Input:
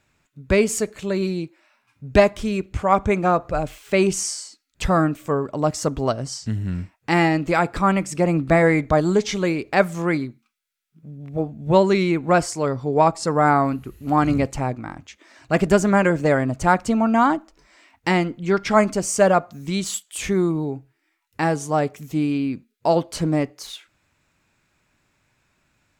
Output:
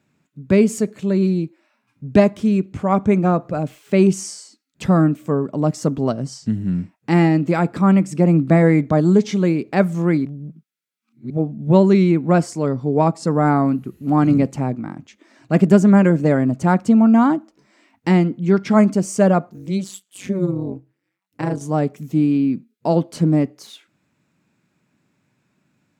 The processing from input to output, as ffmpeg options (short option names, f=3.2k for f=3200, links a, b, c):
-filter_complex "[0:a]asettb=1/sr,asplit=3[a][b][c];[a]atrim=end=19.494[d];[b]atrim=start=19.49:end=21.61,asetpts=PTS-STARTPTS,afade=t=in:d=0.004:c=qsin,afade=t=out:st=2.116:d=0.004:c=qsin,tremolo=f=190:d=0.974[e];[c]atrim=start=21.606[f];[d][e]acrossfade=d=0.004:c1=hsin:c2=qsin[g];[g][f]acrossfade=d=0.004:c1=qsin:c2=hsin,asplit=3[h][i][j];[h]atrim=end=10.252[k];[i]atrim=start=10.248:end=11.302,asetpts=PTS-STARTPTS,areverse[l];[j]atrim=start=11.298[m];[k][l]acrossfade=d=0.004:c1=hsin:c2=hsin[n];[n][m]acrossfade=d=0.004:c1=hsin:c2=hsin,highpass=130,equalizer=f=190:t=o:w=2.2:g=14,volume=-5dB"